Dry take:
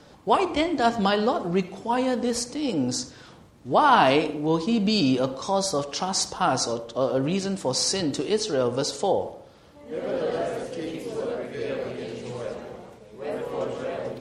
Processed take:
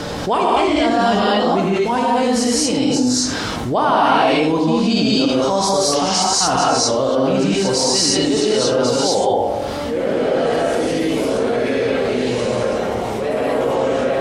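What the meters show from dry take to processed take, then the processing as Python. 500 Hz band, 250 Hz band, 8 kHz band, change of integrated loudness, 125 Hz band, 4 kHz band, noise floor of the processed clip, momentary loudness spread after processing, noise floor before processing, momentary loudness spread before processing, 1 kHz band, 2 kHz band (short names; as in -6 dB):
+9.0 dB, +8.5 dB, +10.5 dB, +8.5 dB, +7.0 dB, +10.0 dB, -23 dBFS, 6 LU, -50 dBFS, 12 LU, +7.5 dB, +8.0 dB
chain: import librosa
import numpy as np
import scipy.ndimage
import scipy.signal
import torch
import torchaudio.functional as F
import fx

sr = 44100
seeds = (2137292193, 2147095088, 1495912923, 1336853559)

y = fx.rev_gated(x, sr, seeds[0], gate_ms=260, shape='rising', drr_db=-7.0)
y = fx.env_flatten(y, sr, amount_pct=70)
y = y * 10.0 ** (-6.0 / 20.0)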